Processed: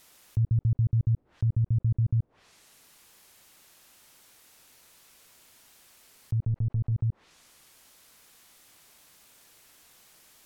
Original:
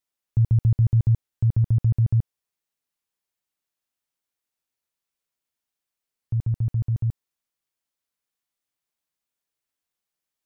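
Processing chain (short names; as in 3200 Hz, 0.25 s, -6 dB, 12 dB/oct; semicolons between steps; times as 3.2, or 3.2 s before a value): 6.46–6.92 half-wave gain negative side -3 dB; treble ducked by the level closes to 350 Hz, closed at -20 dBFS; fast leveller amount 50%; gain -6 dB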